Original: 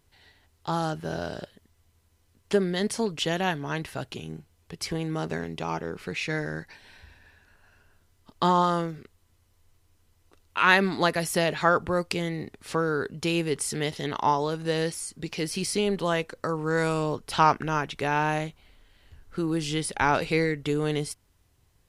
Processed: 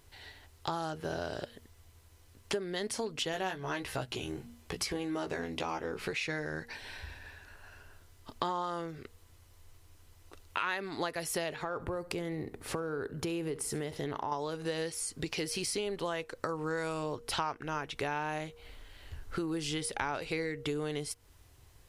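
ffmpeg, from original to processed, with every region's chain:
-filter_complex "[0:a]asettb=1/sr,asplit=3[a][b][c];[a]atrim=end=3.324[d];[b]atrim=start=3.32:end=6.13,asetpts=PTS-STARTPTS,afade=t=in:d=0.004:c=qsin,afade=t=out:st=2.806:d=0.004:c=qsin,bandreject=f=60:t=h:w=6,bandreject=f=120:t=h:w=6,bandreject=f=180:t=h:w=6,bandreject=f=240:t=h:w=6,asoftclip=type=hard:threshold=-18.5dB,asplit=2[e][f];[f]adelay=16,volume=-4.5dB[g];[e][g]amix=inputs=2:normalize=0,atrim=end_sample=123921[h];[c]atrim=start=6.126[i];[d][h]acrossfade=d=0.004:c1=hsin:c2=qsin[j];[j][i]acrossfade=d=0.004:c1=qsin:c2=hsin,asettb=1/sr,asplit=3[k][l][m];[k]atrim=end=11.564[n];[l]atrim=start=11.56:end=14.32,asetpts=PTS-STARTPTS,afade=t=in:d=0.004:c=qsin,afade=t=out:st=2.756:d=0.004:c=qsin,equalizer=f=4.3k:w=0.38:g=-9.5,acompressor=threshold=-26dB:ratio=6:attack=3.2:release=140:knee=1:detection=peak,aecho=1:1:69|138|207:0.112|0.0438|0.0171,atrim=end_sample=121716[o];[m]atrim=start=14.316[p];[n][o]acrossfade=d=0.004:c1=hsin:c2=qsin[q];[q][p]acrossfade=d=0.004:c1=qsin:c2=hsin,equalizer=f=190:t=o:w=0.62:g=-8.5,bandreject=f=235.8:t=h:w=4,bandreject=f=471.6:t=h:w=4,acompressor=threshold=-40dB:ratio=5,volume=6.5dB"

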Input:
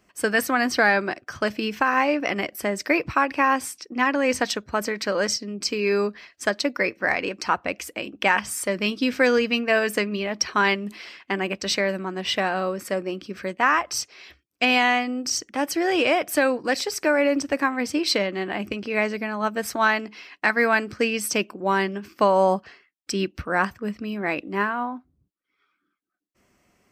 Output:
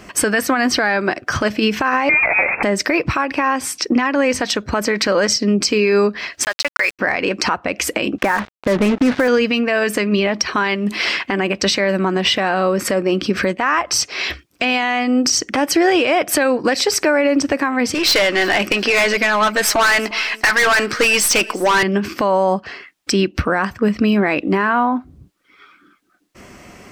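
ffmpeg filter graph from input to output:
-filter_complex "[0:a]asettb=1/sr,asplit=3[a][b][c];[a]atrim=end=2.094[d];[b]atrim=start=2.09:end=2.63,asetpts=PTS-STARTPTS,afade=t=in:d=0.004:c=qsin,afade=t=out:st=0.536:d=0.004:c=qsin,aeval=exprs='val(0)+0.5*0.0531*sgn(val(0))':c=same,lowpass=f=2.3k:t=q:w=0.5098,lowpass=f=2.3k:t=q:w=0.6013,lowpass=f=2.3k:t=q:w=0.9,lowpass=f=2.3k:t=q:w=2.563,afreqshift=-2700[e];[c]atrim=start=2.626[f];[d][e]acrossfade=d=0.004:c1=hsin:c2=qsin[g];[g][f]acrossfade=d=0.004:c1=qsin:c2=hsin,asettb=1/sr,asplit=3[h][i][j];[h]atrim=end=6.434[k];[i]atrim=start=6.43:end=6.99,asetpts=PTS-STARTPTS,afade=t=in:d=0.004:c=qsin,afade=t=out:st=0.556:d=0.004:c=qsin,highpass=1k,aeval=exprs='val(0)*gte(abs(val(0)),0.0158)':c=same[l];[j]atrim=start=6.986[m];[k][l]acrossfade=d=0.004:c1=hsin:c2=qsin[n];[n][m]acrossfade=d=0.004:c1=qsin:c2=hsin,asettb=1/sr,asplit=3[o][p][q];[o]atrim=end=8.184[r];[p]atrim=start=8.18:end=9.28,asetpts=PTS-STARTPTS,afade=t=in:d=0.004:c=qsin,afade=t=out:st=1.096:d=0.004:c=qsin,aeval=exprs='val(0)+0.5*0.0299*sgn(val(0))':c=same,lowpass=f=1.9k:w=0.5412,lowpass=f=1.9k:w=1.3066,acrusher=bits=4:mix=0:aa=0.5[s];[q]atrim=start=9.276[t];[r][s]acrossfade=d=0.004:c1=hsin:c2=qsin[u];[u][t]acrossfade=d=0.004:c1=qsin:c2=hsin,asettb=1/sr,asplit=3[v][w][x];[v]atrim=end=17.944[y];[w]atrim=start=17.94:end=21.83,asetpts=PTS-STARTPTS,afade=t=in:d=0.004:c=qsin,afade=t=out:st=3.886:d=0.004:c=qsin,highpass=f=1.1k:p=1,aeval=exprs='(tanh(39.8*val(0)+0.1)-tanh(0.1))/39.8':c=same,aecho=1:1:353|706:0.0841|0.0227,atrim=end_sample=171549[z];[x]atrim=start=21.826[aa];[y][z]acrossfade=d=0.004:c1=hsin:c2=qsin[ab];[ab][aa]acrossfade=d=0.004:c1=qsin:c2=hsin,highshelf=f=9.6k:g=-8.5,acompressor=threshold=-36dB:ratio=6,alimiter=level_in=29.5dB:limit=-1dB:release=50:level=0:latency=1,volume=-5.5dB"

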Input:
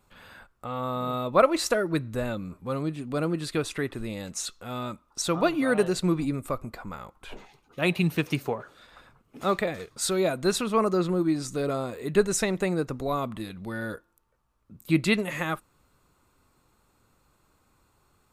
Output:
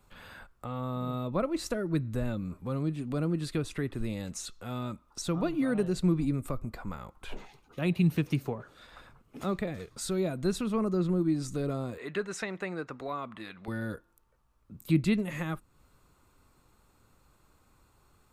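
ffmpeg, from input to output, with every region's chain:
-filter_complex "[0:a]asettb=1/sr,asplit=3[a][b][c];[a]atrim=end=11.984[d];[b]atrim=start=11.98:end=13.68,asetpts=PTS-STARTPTS,afade=t=in:d=0.004:c=qsin,afade=t=out:st=1.696:d=0.004:c=qsin,acontrast=82,bandpass=f=1.6k:t=q:w=0.95[e];[c]atrim=start=13.676[f];[d][e]acrossfade=d=0.004:c1=hsin:c2=qsin[g];[g][f]acrossfade=d=0.004:c1=qsin:c2=hsin,lowshelf=f=81:g=5.5,acrossover=split=310[h][i];[i]acompressor=threshold=-43dB:ratio=2[j];[h][j]amix=inputs=2:normalize=0"

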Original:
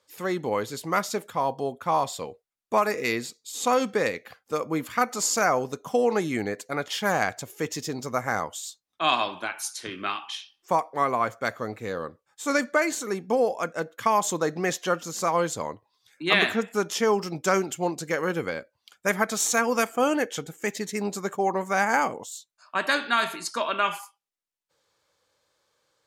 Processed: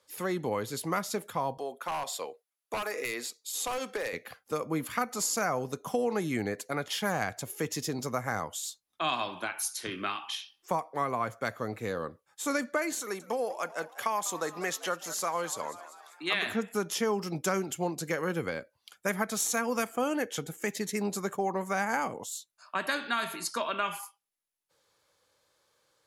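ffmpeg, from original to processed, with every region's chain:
-filter_complex "[0:a]asettb=1/sr,asplit=3[a][b][c];[a]atrim=end=1.574[d];[b]atrim=start=1.57:end=4.13,asetpts=PTS-STARTPTS,afade=t=in:d=0.004:c=qsin,afade=t=out:st=2.556:d=0.004:c=qsin,highpass=430,aeval=exprs='0.119*(abs(mod(val(0)/0.119+3,4)-2)-1)':c=same,acompressor=threshold=-28dB:ratio=3:attack=3.2:release=140:knee=1:detection=peak[e];[c]atrim=start=4.126[f];[d][e]acrossfade=d=0.004:c1=hsin:c2=qsin[g];[g][f]acrossfade=d=0.004:c1=qsin:c2=hsin,asettb=1/sr,asplit=3[h][i][j];[h]atrim=end=13.004[k];[i]atrim=start=13:end=16.46,asetpts=PTS-STARTPTS,afade=t=in:d=0.004:c=qsin,afade=t=out:st=3.456:d=0.004:c=qsin,highpass=f=630:p=1,asplit=5[l][m][n][o][p];[m]adelay=196,afreqshift=93,volume=-17dB[q];[n]adelay=392,afreqshift=186,volume=-22.8dB[r];[o]adelay=588,afreqshift=279,volume=-28.7dB[s];[p]adelay=784,afreqshift=372,volume=-34.5dB[t];[l][q][r][s][t]amix=inputs=5:normalize=0,atrim=end_sample=152586[u];[j]atrim=start=16.456[v];[k][u]acrossfade=d=0.004:c1=hsin:c2=qsin[w];[w][v]acrossfade=d=0.004:c1=qsin:c2=hsin,equalizer=f=11k:t=o:w=0.2:g=11,acrossover=split=180[x][y];[y]acompressor=threshold=-32dB:ratio=2[z];[x][z]amix=inputs=2:normalize=0"

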